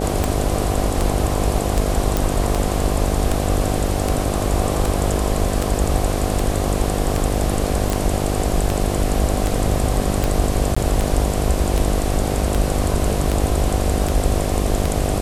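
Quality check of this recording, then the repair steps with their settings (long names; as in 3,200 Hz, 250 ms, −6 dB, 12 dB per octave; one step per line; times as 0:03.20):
mains buzz 50 Hz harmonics 15 −23 dBFS
scratch tick 78 rpm
0:02.17: click
0:07.90: click
0:10.75–0:10.77: drop-out 15 ms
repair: click removal
hum removal 50 Hz, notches 15
repair the gap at 0:10.75, 15 ms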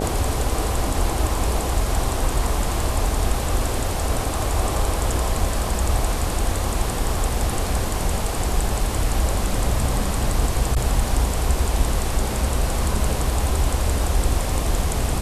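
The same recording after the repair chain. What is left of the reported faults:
none of them is left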